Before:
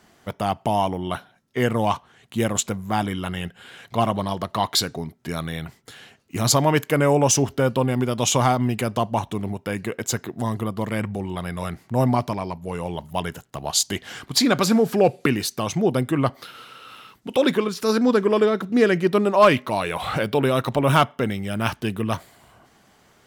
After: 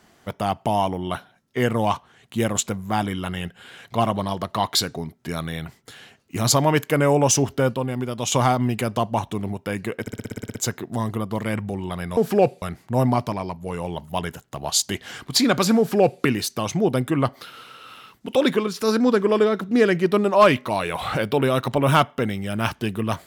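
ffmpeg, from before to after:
-filter_complex "[0:a]asplit=14[s0][s1][s2][s3][s4][s5][s6][s7][s8][s9][s10][s11][s12][s13];[s0]atrim=end=7.742[s14];[s1]atrim=start=7.738:end=8.322,asetpts=PTS-STARTPTS,volume=0.596[s15];[s2]atrim=start=8.318:end=10.072[s16];[s3]atrim=start=10.008:end=10.072[s17];[s4]atrim=start=10.008:end=10.072[s18];[s5]atrim=start=10.008:end=10.072[s19];[s6]atrim=start=10.008:end=10.072[s20];[s7]atrim=start=10.008:end=10.072[s21];[s8]atrim=start=10.008:end=10.072[s22];[s9]atrim=start=10.008:end=10.072[s23];[s10]atrim=start=10.008:end=10.072[s24];[s11]atrim=start=10.008:end=11.632[s25];[s12]atrim=start=14.788:end=15.242[s26];[s13]atrim=start=11.628[s27];[s14][s15]acrossfade=d=0.004:c1=hsin:c2=hsin[s28];[s28][s16]acrossfade=d=0.004:c1=hsin:c2=hsin[s29];[s29][s17]acrossfade=d=0.004:c1=hsin:c2=hsin[s30];[s30][s18]acrossfade=d=0.004:c1=hsin:c2=hsin[s31];[s31][s19]acrossfade=d=0.004:c1=hsin:c2=hsin[s32];[s32][s20]acrossfade=d=0.004:c1=hsin:c2=hsin[s33];[s33][s21]acrossfade=d=0.004:c1=hsin:c2=hsin[s34];[s34][s22]acrossfade=d=0.004:c1=hsin:c2=hsin[s35];[s35][s23]acrossfade=d=0.004:c1=hsin:c2=hsin[s36];[s36][s24]acrossfade=d=0.004:c1=hsin:c2=hsin[s37];[s37][s25]acrossfade=d=0.004:c1=hsin:c2=hsin[s38];[s38][s26]acrossfade=d=0.004:c1=hsin:c2=hsin[s39];[s39][s27]acrossfade=d=0.004:c1=hsin:c2=hsin"

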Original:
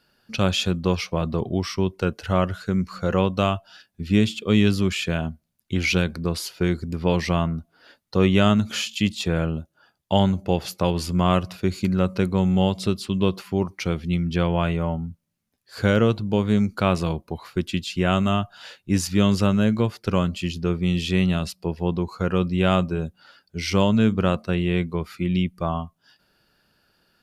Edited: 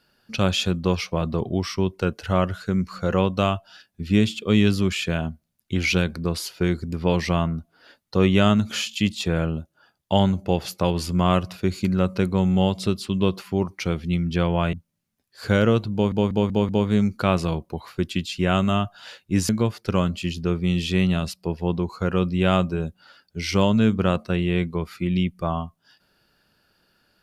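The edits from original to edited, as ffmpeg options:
-filter_complex "[0:a]asplit=7[s0][s1][s2][s3][s4][s5][s6];[s0]atrim=end=14.732[s7];[s1]atrim=start=15.068:end=16.462[s8];[s2]atrim=start=16.268:end=16.462[s9];[s3]atrim=start=16.268:end=16.462[s10];[s4]atrim=start=16.268:end=16.462[s11];[s5]atrim=start=16.268:end=19.072[s12];[s6]atrim=start=19.678[s13];[s7][s8]acrossfade=d=0.004:c1=hsin:c2=hsin[s14];[s14][s9]acrossfade=d=0.004:c1=hsin:c2=hsin[s15];[s15][s10]acrossfade=d=0.004:c1=hsin:c2=hsin[s16];[s16][s11]acrossfade=d=0.004:c1=hsin:c2=hsin[s17];[s17][s12]acrossfade=d=0.004:c1=hsin:c2=hsin[s18];[s18][s13]acrossfade=d=0.004:c1=hsin:c2=hsin"

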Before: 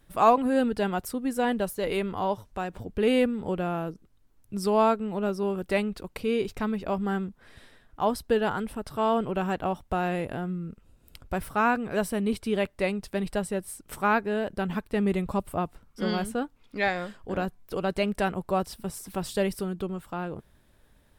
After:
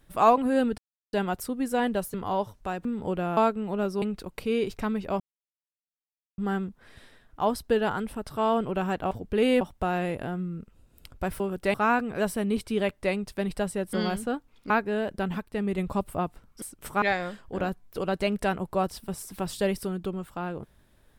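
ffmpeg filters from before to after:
-filter_complex "[0:a]asplit=17[s0][s1][s2][s3][s4][s5][s6][s7][s8][s9][s10][s11][s12][s13][s14][s15][s16];[s0]atrim=end=0.78,asetpts=PTS-STARTPTS,afade=t=out:st=0.776:d=0.004:c=hsin,apad=pad_dur=0.35[s17];[s1]atrim=start=0.78:end=1.792,asetpts=PTS-STARTPTS,afade=t=in:d=0.004:c=hsin[s18];[s2]atrim=start=2.048:end=2.762[s19];[s3]atrim=start=3.258:end=3.782[s20];[s4]atrim=start=4.808:end=5.462[s21];[s5]atrim=start=5.798:end=6.98,asetpts=PTS-STARTPTS,afade=t=out:st=1.178:d=0.004:c=hsin,apad=pad_dur=1.18[s22];[s6]atrim=start=6.98:end=9.712,asetpts=PTS-STARTPTS,afade=t=in:d=0.004:c=hsin[s23];[s7]atrim=start=2.758:end=3.262[s24];[s8]atrim=start=9.708:end=11.502[s25];[s9]atrim=start=5.458:end=5.802[s26];[s10]atrim=start=11.498:end=13.692[s27];[s11]atrim=start=16.008:end=16.782[s28];[s12]atrim=start=14.088:end=14.772[s29];[s13]atrim=start=14.768:end=15.172,asetpts=PTS-STARTPTS,volume=0.668[s30];[s14]atrim=start=15.168:end=16.012[s31];[s15]atrim=start=13.688:end=14.092[s32];[s16]atrim=start=16.778[s33];[s17][s18]concat=n=2:v=0:a=1[s34];[s34][s19]acrossfade=d=0.004:c1=hsin:c2=hsin[s35];[s35][s20]acrossfade=d=0.004:c1=hsin:c2=hsin[s36];[s36][s21]acrossfade=d=0.004:c1=hsin:c2=hsin[s37];[s22][s23]concat=n=2:v=0:a=1[s38];[s37][s38]acrossfade=d=0.004:c1=hsin:c2=hsin[s39];[s39][s24]acrossfade=d=0.004:c1=hsin:c2=hsin[s40];[s40][s25]acrossfade=d=0.004:c1=hsin:c2=hsin[s41];[s41][s26]acrossfade=d=0.004:c1=hsin:c2=hsin[s42];[s42][s27]acrossfade=d=0.004:c1=hsin:c2=hsin[s43];[s43][s28]acrossfade=d=0.004:c1=hsin:c2=hsin[s44];[s44][s29]acrossfade=d=0.004:c1=hsin:c2=hsin[s45];[s45][s30]acrossfade=d=0.004:c1=hsin:c2=hsin[s46];[s46][s31]acrossfade=d=0.004:c1=hsin:c2=hsin[s47];[s47][s32]acrossfade=d=0.004:c1=hsin:c2=hsin[s48];[s48][s33]acrossfade=d=0.004:c1=hsin:c2=hsin"

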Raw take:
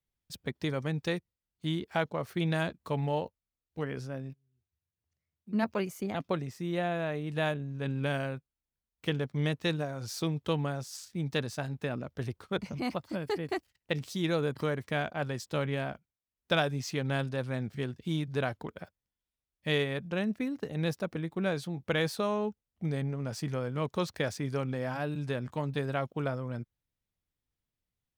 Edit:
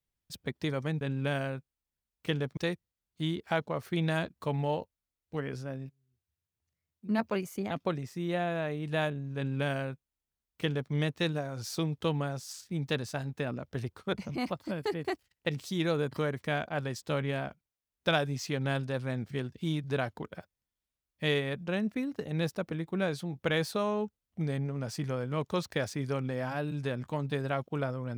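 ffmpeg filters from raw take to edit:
-filter_complex "[0:a]asplit=3[s0][s1][s2];[s0]atrim=end=1.012[s3];[s1]atrim=start=7.798:end=9.362[s4];[s2]atrim=start=1.008[s5];[s3][s4]acrossfade=d=0.004:c1=hsin:c2=hsin[s6];[s6][s5]acrossfade=d=0.004:c1=hsin:c2=hsin"

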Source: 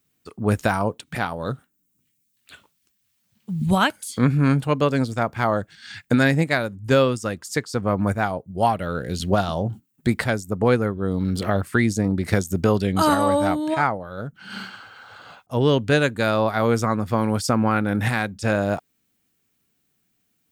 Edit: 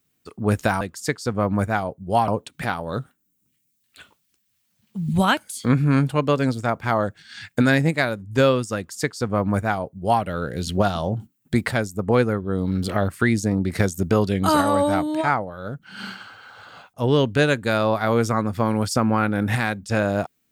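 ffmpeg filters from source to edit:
-filter_complex "[0:a]asplit=3[s0][s1][s2];[s0]atrim=end=0.812[s3];[s1]atrim=start=7.288:end=8.762[s4];[s2]atrim=start=0.808[s5];[s3][s4]acrossfade=d=0.004:c1=hsin:c2=hsin[s6];[s6][s5]acrossfade=d=0.004:c1=hsin:c2=hsin"

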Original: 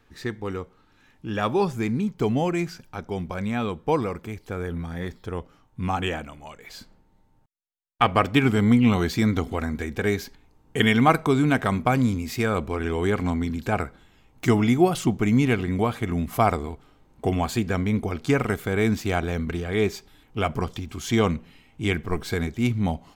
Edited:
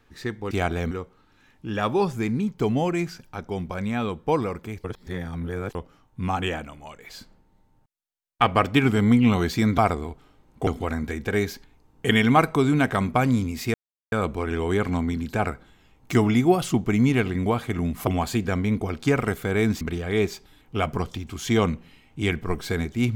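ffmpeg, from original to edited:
-filter_complex "[0:a]asplit=10[s0][s1][s2][s3][s4][s5][s6][s7][s8][s9];[s0]atrim=end=0.512[s10];[s1]atrim=start=19.028:end=19.432[s11];[s2]atrim=start=0.508:end=4.442[s12];[s3]atrim=start=4.438:end=5.352,asetpts=PTS-STARTPTS,areverse[s13];[s4]atrim=start=5.348:end=9.382[s14];[s5]atrim=start=16.398:end=17.292[s15];[s6]atrim=start=9.378:end=12.45,asetpts=PTS-STARTPTS,afade=t=out:st=3.068:d=0.004:c=hsin,apad=pad_dur=0.38[s16];[s7]atrim=start=12.45:end=16.402,asetpts=PTS-STARTPTS,afade=t=in:d=0.004:c=hsin[s17];[s8]atrim=start=17.288:end=19.032[s18];[s9]atrim=start=19.428[s19];[s10][s11]acrossfade=d=0.004:c1=hsin:c2=hsin[s20];[s20][s12]acrossfade=d=0.004:c1=hsin:c2=hsin[s21];[s21][s13]acrossfade=d=0.004:c1=hsin:c2=hsin[s22];[s22][s14]acrossfade=d=0.004:c1=hsin:c2=hsin[s23];[s23][s15]acrossfade=d=0.004:c1=hsin:c2=hsin[s24];[s16][s17]concat=n=2:v=0:a=1[s25];[s24][s25]acrossfade=d=0.004:c1=hsin:c2=hsin[s26];[s26][s18]acrossfade=d=0.004:c1=hsin:c2=hsin[s27];[s27][s19]acrossfade=d=0.004:c1=hsin:c2=hsin"

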